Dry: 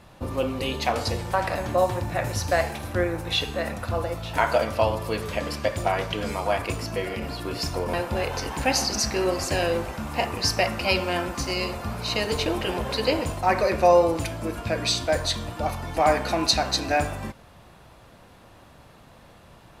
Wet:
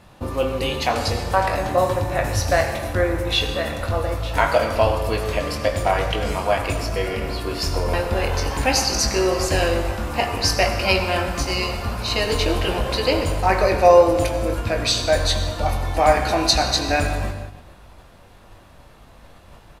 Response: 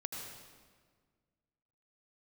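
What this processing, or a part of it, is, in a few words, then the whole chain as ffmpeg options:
keyed gated reverb: -filter_complex "[0:a]asubboost=boost=3:cutoff=70,asplit=2[link_01][link_02];[link_02]adelay=21,volume=-8dB[link_03];[link_01][link_03]amix=inputs=2:normalize=0,asplit=3[link_04][link_05][link_06];[1:a]atrim=start_sample=2205[link_07];[link_05][link_07]afir=irnorm=-1:irlink=0[link_08];[link_06]apad=whole_len=874138[link_09];[link_08][link_09]sidechaingate=range=-8dB:threshold=-45dB:ratio=16:detection=peak,volume=-1dB[link_10];[link_04][link_10]amix=inputs=2:normalize=0,volume=-1dB"

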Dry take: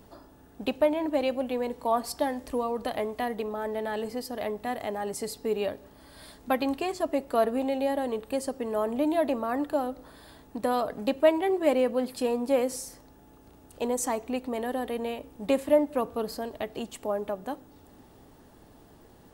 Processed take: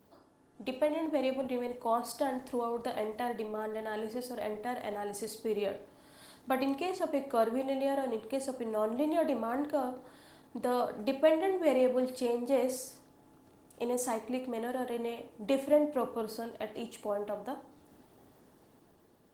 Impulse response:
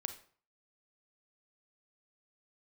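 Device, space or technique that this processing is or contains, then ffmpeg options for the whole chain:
far-field microphone of a smart speaker: -filter_complex "[1:a]atrim=start_sample=2205[link_01];[0:a][link_01]afir=irnorm=-1:irlink=0,highpass=110,dynaudnorm=framelen=180:gausssize=9:maxgain=5dB,volume=-8dB" -ar 48000 -c:a libopus -b:a 20k

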